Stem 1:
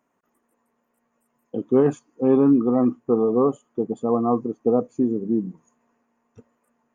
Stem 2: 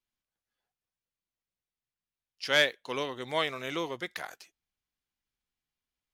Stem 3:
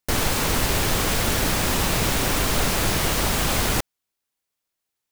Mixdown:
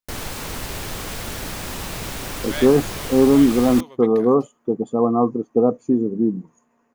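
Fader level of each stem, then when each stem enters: +3.0, −7.5, −8.0 decibels; 0.90, 0.00, 0.00 seconds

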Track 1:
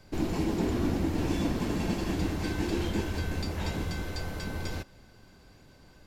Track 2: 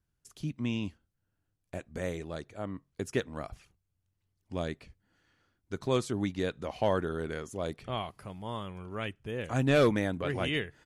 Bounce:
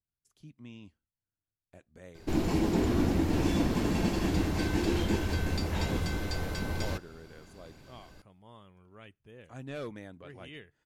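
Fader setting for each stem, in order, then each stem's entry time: +1.5, −15.5 decibels; 2.15, 0.00 seconds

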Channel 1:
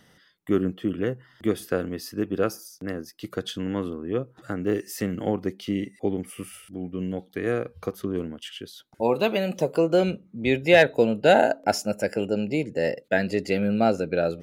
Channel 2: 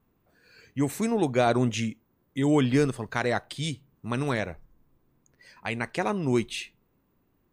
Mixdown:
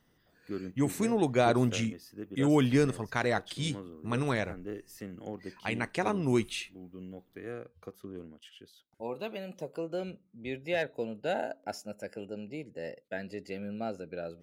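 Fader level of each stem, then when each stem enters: −15.0, −2.5 decibels; 0.00, 0.00 seconds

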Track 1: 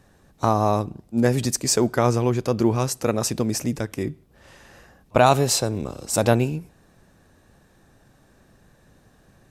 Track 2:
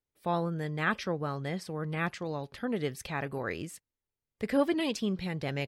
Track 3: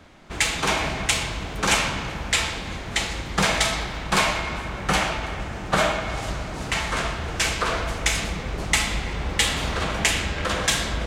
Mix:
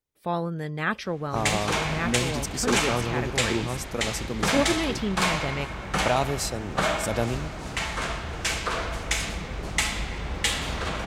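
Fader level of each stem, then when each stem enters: −8.5, +2.5, −4.0 decibels; 0.90, 0.00, 1.05 seconds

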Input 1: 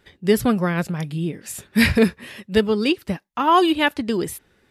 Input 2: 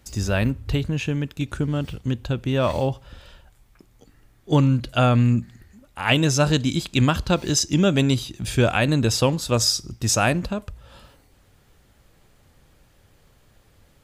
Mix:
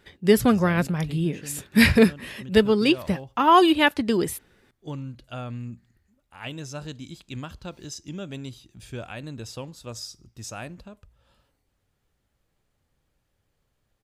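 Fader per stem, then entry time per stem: 0.0, −17.0 decibels; 0.00, 0.35 seconds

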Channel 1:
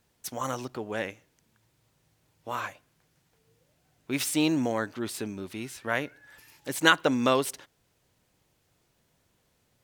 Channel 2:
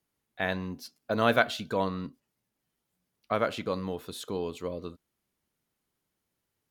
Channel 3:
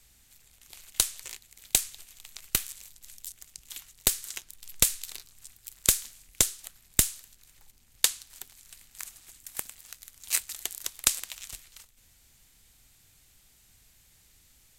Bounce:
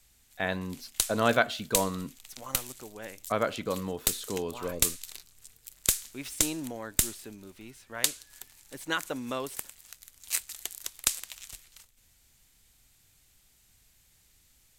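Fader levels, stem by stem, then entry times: −10.5, −0.5, −3.0 decibels; 2.05, 0.00, 0.00 seconds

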